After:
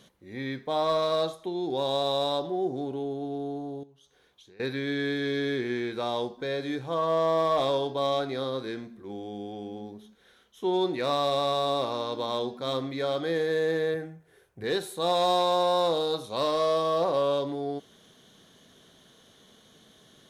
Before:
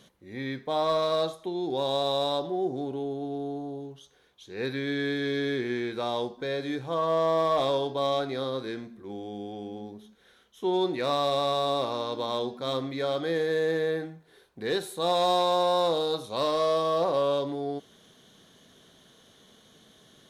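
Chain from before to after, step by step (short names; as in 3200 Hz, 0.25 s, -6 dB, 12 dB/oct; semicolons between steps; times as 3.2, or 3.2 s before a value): 3.83–4.6 compressor 12:1, threshold -53 dBFS, peak gain reduction 19.5 dB; 13.94–14.64 fifteen-band EQ 100 Hz +9 dB, 250 Hz -7 dB, 1000 Hz -5 dB, 4000 Hz -11 dB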